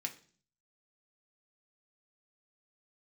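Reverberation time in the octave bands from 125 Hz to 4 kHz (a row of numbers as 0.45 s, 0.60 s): 0.75 s, 0.65 s, 0.50 s, 0.40 s, 0.40 s, 0.50 s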